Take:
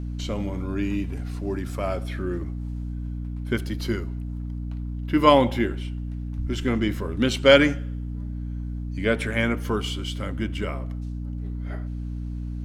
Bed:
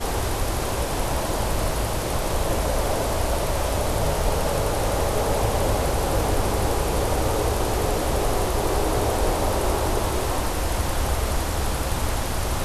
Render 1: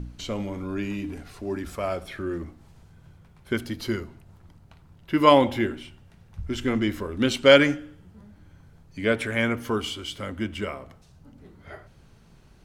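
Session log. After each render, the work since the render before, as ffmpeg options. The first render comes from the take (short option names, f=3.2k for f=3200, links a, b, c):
-af "bandreject=f=60:t=h:w=4,bandreject=f=120:t=h:w=4,bandreject=f=180:t=h:w=4,bandreject=f=240:t=h:w=4,bandreject=f=300:t=h:w=4"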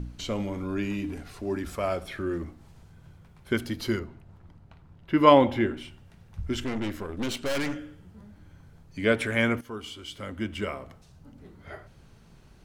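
-filter_complex "[0:a]asettb=1/sr,asplit=3[a][b][c];[a]atrim=end=3.994[d];[b]atrim=start=3.99:end=5.77,asetpts=PTS-STARTPTS,afade=t=in:d=0.004:c=qsin,afade=t=out:st=1.776:d=0.004:c=qsin,highshelf=f=4.7k:g=-12[e];[c]atrim=start=5.766[f];[d][e]acrossfade=d=0.004:c1=hsin:c2=qsin[g];[g][f]acrossfade=d=0.004:c1=qsin:c2=hsin,asettb=1/sr,asplit=3[h][i][j];[h]atrim=end=6.644[k];[i]atrim=start=6.64:end=7.76,asetpts=PTS-STARTPTS,afade=t=in:d=0.004:c=qsin,afade=t=out:st=1.116:d=0.004:c=qsin,aeval=exprs='(tanh(22.4*val(0)+0.7)-tanh(0.7))/22.4':c=same[l];[j]atrim=start=7.756[m];[k][l]acrossfade=d=0.004:c1=hsin:c2=qsin[n];[n][m]acrossfade=d=0.004:c1=qsin:c2=hsin,asplit=2[o][p];[o]atrim=end=9.61,asetpts=PTS-STARTPTS,afade=t=out:st=9.606:d=0.004:c=hsin:silence=0.177828[q];[p]atrim=start=9.61,asetpts=PTS-STARTPTS,afade=t=in:d=1.15:silence=0.177828[r];[q][r]concat=n=2:v=0:a=1"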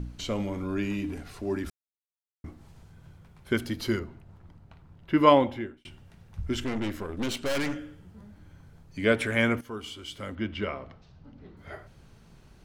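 -filter_complex "[0:a]asettb=1/sr,asplit=3[a][b][c];[a]atrim=end=10.354[d];[b]atrim=start=10.35:end=11.57,asetpts=PTS-STARTPTS,afade=t=in:d=0.004:c=qsin,afade=t=out:st=1.216:d=0.004:c=qsin,lowpass=f=4.9k:w=0.5412,lowpass=f=4.9k:w=1.3066[e];[c]atrim=start=11.566[f];[d][e]acrossfade=d=0.004:c1=hsin:c2=qsin[g];[g][f]acrossfade=d=0.004:c1=qsin:c2=hsin,asplit=4[h][i][j][k];[h]atrim=end=1.7,asetpts=PTS-STARTPTS,afade=t=out:st=1.696:d=0.004:c=hsin[l];[i]atrim=start=1.7:end=2.44,asetpts=PTS-STARTPTS,volume=0[m];[j]atrim=start=2.44:end=5.85,asetpts=PTS-STARTPTS,afade=t=in:d=0.004:c=hsin,afade=t=out:st=2.73:d=0.68[n];[k]atrim=start=5.85,asetpts=PTS-STARTPTS,afade=t=in:d=0.004:c=hsin[o];[l][m][n][o]concat=n=4:v=0:a=1"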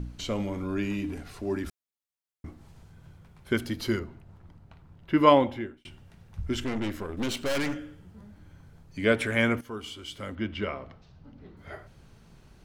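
-filter_complex "[0:a]asettb=1/sr,asplit=3[a][b][c];[a]atrim=end=7.174[d];[b]atrim=start=7.17:end=7.74,asetpts=PTS-STARTPTS,afade=t=in:d=0.004:c=qsin,afade=t=out:st=0.566:d=0.004:c=qsin,aeval=exprs='val(0)+0.5*0.00299*sgn(val(0))':c=same[e];[c]atrim=start=7.736[f];[d][e]acrossfade=d=0.004:c1=hsin:c2=qsin[g];[g][f]acrossfade=d=0.004:c1=qsin:c2=hsin"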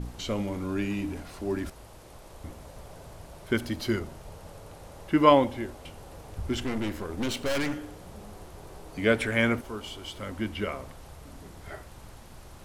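-filter_complex "[1:a]volume=-24dB[a];[0:a][a]amix=inputs=2:normalize=0"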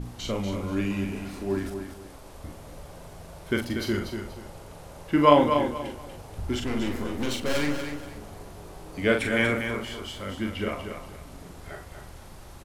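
-filter_complex "[0:a]asplit=2[a][b];[b]adelay=41,volume=-5dB[c];[a][c]amix=inputs=2:normalize=0,aecho=1:1:240|480|720:0.422|0.114|0.0307"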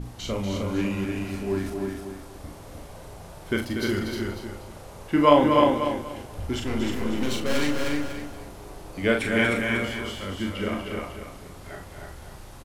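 -filter_complex "[0:a]asplit=2[a][b];[b]adelay=31,volume=-11dB[c];[a][c]amix=inputs=2:normalize=0,aecho=1:1:308:0.631"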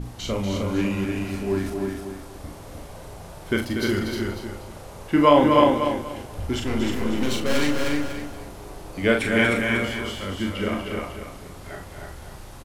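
-af "volume=2.5dB,alimiter=limit=-3dB:level=0:latency=1"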